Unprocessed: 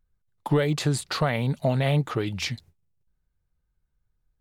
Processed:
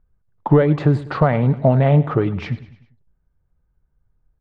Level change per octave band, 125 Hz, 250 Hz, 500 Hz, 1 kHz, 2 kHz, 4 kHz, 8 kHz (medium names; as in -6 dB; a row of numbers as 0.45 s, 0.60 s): +9.0 dB, +9.0 dB, +9.0 dB, +8.0 dB, +2.0 dB, no reading, under -20 dB